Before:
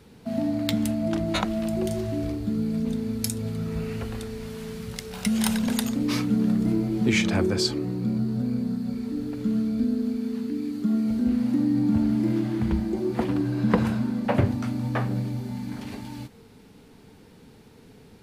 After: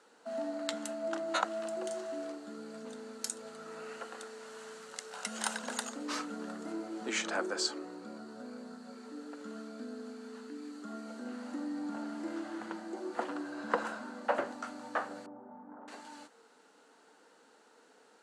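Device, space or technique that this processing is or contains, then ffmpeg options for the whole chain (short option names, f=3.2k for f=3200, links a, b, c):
phone speaker on a table: -filter_complex "[0:a]asettb=1/sr,asplit=3[a][b][c];[a]atrim=end=15.264[d];[b]atrim=start=15.26:end=15.88,asetpts=PTS-STARTPTS,afade=t=in:d=0.004:c=qsin,afade=t=out:st=0.616:d=0.004:c=qsin,lowpass=f=1.1k:w=0.5412,lowpass=f=1.1k:w=1.3066[e];[c]atrim=start=15.876[f];[d][e]acrossfade=d=0.004:c1=hsin:c2=qsin[g];[g][f]acrossfade=d=0.004:c1=qsin:c2=hsin,highpass=f=380:w=0.5412,highpass=f=380:w=1.3066,equalizer=f=400:t=q:w=4:g=-9,equalizer=f=1.4k:t=q:w=4:g=6,equalizer=f=2.3k:t=q:w=4:g=-9,equalizer=f=3.5k:t=q:w=4:g=-6,equalizer=f=5.1k:t=q:w=4:g=-5,equalizer=f=7.5k:t=q:w=4:g=3,lowpass=f=8.8k:w=0.5412,lowpass=f=8.8k:w=1.3066,volume=-3.5dB"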